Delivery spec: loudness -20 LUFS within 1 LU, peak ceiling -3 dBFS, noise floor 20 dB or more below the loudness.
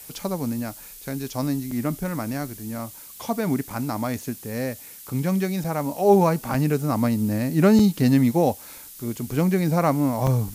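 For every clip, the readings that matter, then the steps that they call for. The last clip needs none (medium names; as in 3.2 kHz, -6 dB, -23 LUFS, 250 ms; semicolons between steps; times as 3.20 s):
dropouts 6; longest dropout 4.0 ms; noise floor -43 dBFS; noise floor target -44 dBFS; loudness -23.5 LUFS; peak level -5.0 dBFS; loudness target -20.0 LUFS
-> interpolate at 1.71/3.70/5.64/6.54/7.79/10.27 s, 4 ms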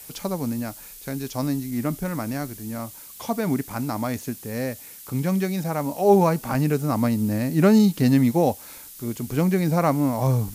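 dropouts 0; noise floor -43 dBFS; noise floor target -44 dBFS
-> noise print and reduce 6 dB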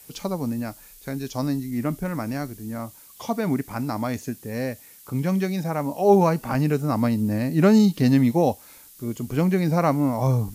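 noise floor -49 dBFS; loudness -23.5 LUFS; peak level -5.0 dBFS; loudness target -20.0 LUFS
-> trim +3.5 dB; peak limiter -3 dBFS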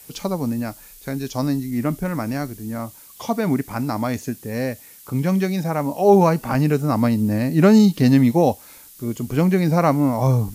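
loudness -20.0 LUFS; peak level -3.0 dBFS; noise floor -45 dBFS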